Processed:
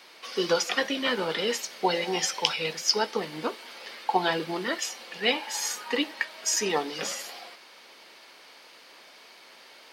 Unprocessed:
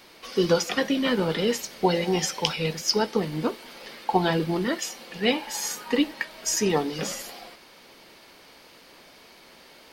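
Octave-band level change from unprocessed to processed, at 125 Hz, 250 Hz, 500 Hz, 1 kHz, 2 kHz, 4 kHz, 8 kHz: −12.5, −8.0, −4.0, −0.5, +1.0, +1.0, −0.5 decibels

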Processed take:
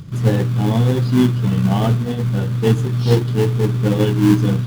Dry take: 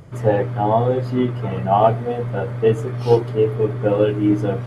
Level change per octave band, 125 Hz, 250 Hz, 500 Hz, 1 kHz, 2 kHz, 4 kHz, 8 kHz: +7.0 dB, +5.5 dB, −4.5 dB, −8.0 dB, +2.5 dB, +8.5 dB, can't be measured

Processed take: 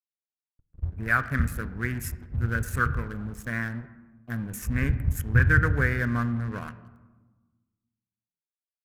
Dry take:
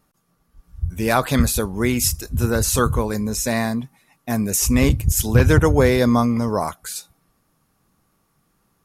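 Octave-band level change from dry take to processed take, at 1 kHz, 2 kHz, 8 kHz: −8.5, +0.5, −20.5 decibels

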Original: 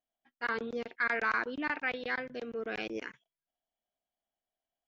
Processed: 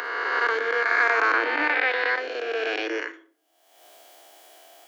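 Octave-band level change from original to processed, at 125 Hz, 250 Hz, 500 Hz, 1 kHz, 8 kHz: below −20 dB, +3.5 dB, +10.5 dB, +12.0 dB, can't be measured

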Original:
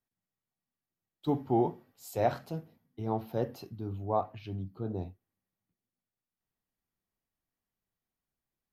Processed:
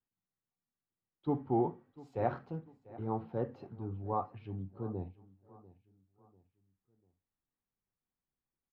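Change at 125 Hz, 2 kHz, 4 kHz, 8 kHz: −3.0 dB, −5.0 dB, below −15 dB, below −20 dB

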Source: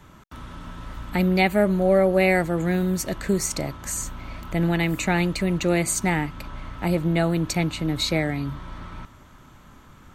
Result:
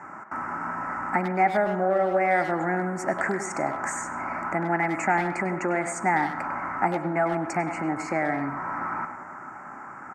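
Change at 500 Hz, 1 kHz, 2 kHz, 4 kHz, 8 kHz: −3.0, +6.5, +0.5, −18.5, −9.0 decibels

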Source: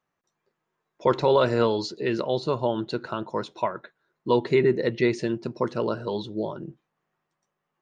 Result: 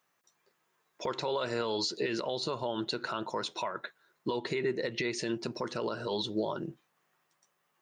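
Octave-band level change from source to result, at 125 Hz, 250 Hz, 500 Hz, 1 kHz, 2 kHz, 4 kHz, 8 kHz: −11.5 dB, −8.5 dB, −10.0 dB, −8.0 dB, −4.5 dB, +0.5 dB, can't be measured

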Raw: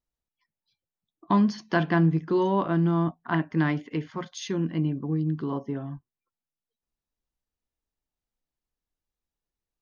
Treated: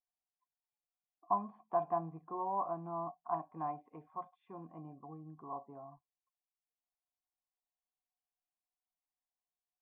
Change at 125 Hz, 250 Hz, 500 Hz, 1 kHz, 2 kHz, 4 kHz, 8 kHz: −25.0 dB, −24.0 dB, −11.5 dB, −5.0 dB, −30.5 dB, below −40 dB, can't be measured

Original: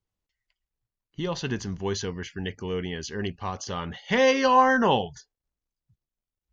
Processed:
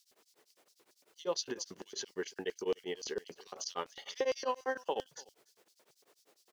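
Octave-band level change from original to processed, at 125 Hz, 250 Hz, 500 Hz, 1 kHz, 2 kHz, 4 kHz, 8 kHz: −26.5 dB, −17.5 dB, −10.5 dB, −17.5 dB, −16.5 dB, −9.5 dB, can't be measured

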